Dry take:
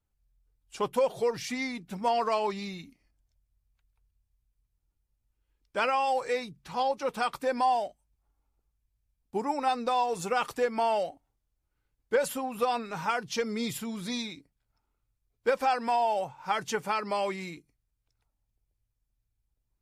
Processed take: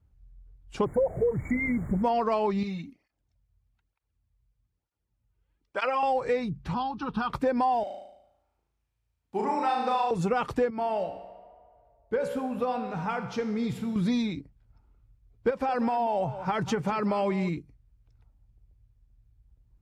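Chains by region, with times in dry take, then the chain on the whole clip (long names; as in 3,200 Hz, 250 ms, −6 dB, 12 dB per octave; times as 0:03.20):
0:00.84–0:02.02: spectral envelope exaggerated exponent 3 + background noise pink −51 dBFS + linear-phase brick-wall band-stop 2,300–6,700 Hz
0:02.63–0:06.03: low-shelf EQ 290 Hz −10 dB + through-zero flanger with one copy inverted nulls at 1.1 Hz, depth 3.9 ms
0:06.74–0:07.30: low-pass filter 8,600 Hz 24 dB per octave + downward compressor 2 to 1, threshold −30 dBFS + phaser with its sweep stopped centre 2,100 Hz, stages 6
0:07.83–0:10.11: high-pass filter 1,100 Hz 6 dB per octave + flutter between parallel walls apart 6.3 metres, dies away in 0.77 s
0:10.70–0:13.96: tuned comb filter 63 Hz, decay 0.98 s, mix 70% + tape delay 75 ms, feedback 84%, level −18 dB, low-pass 4,100 Hz
0:15.50–0:17.49: downward compressor, threshold −27 dBFS + single-tap delay 189 ms −15 dB
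whole clip: high-pass filter 54 Hz; RIAA equalisation playback; downward compressor 3 to 1, threshold −31 dBFS; level +6.5 dB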